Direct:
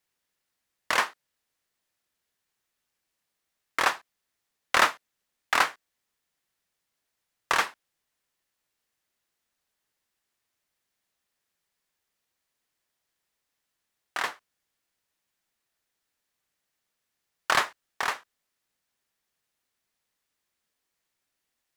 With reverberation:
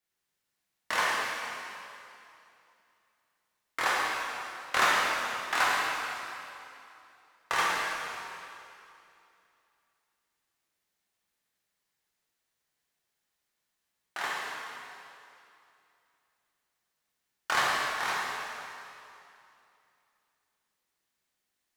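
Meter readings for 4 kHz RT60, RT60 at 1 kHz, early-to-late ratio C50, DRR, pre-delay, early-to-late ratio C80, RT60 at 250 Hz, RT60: 2.5 s, 2.7 s, -3.0 dB, -6.0 dB, 5 ms, -1.0 dB, 2.7 s, 2.7 s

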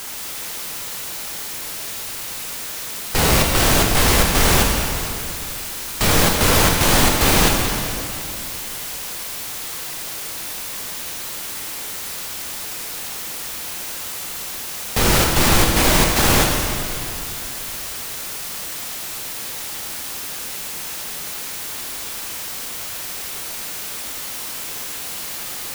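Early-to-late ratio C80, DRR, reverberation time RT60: 3.0 dB, 0.0 dB, 2.7 s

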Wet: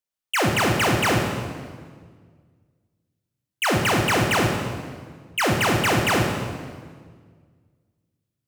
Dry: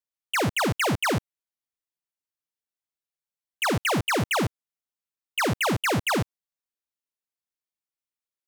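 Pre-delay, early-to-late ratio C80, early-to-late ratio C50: 17 ms, 5.0 dB, 3.5 dB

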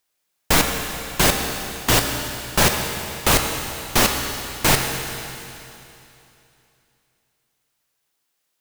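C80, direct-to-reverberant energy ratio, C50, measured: 5.0 dB, 3.0 dB, 4.5 dB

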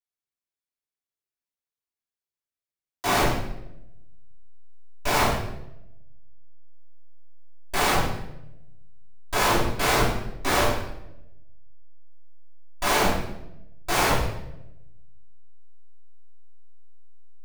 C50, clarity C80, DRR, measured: 2.0 dB, 5.5 dB, -11.0 dB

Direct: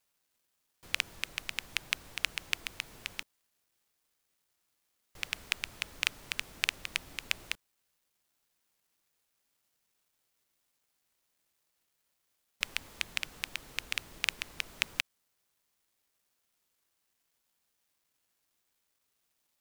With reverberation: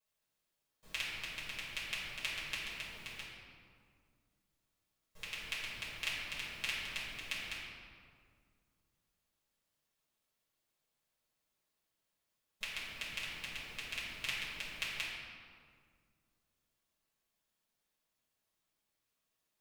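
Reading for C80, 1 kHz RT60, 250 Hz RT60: 1.5 dB, 1.9 s, 2.6 s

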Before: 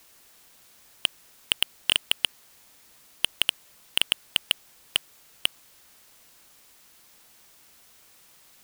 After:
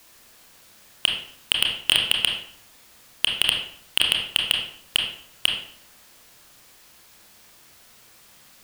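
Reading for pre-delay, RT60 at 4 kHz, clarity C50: 25 ms, 0.45 s, 4.0 dB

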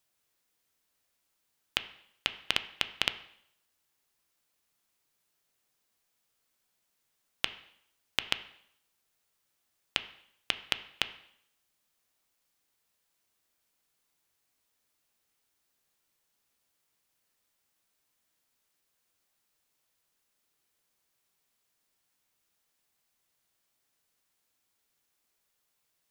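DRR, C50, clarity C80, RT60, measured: 10.5 dB, 14.5 dB, 17.0 dB, 0.70 s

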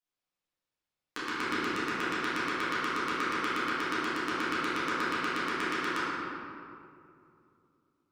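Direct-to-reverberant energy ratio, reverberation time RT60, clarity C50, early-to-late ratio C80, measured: -13.5 dB, 2.5 s, -4.5 dB, -2.5 dB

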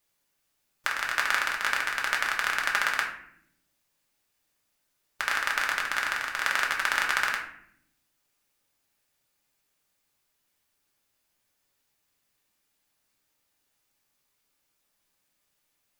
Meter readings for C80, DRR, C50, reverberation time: 9.5 dB, -1.5 dB, 6.0 dB, 0.70 s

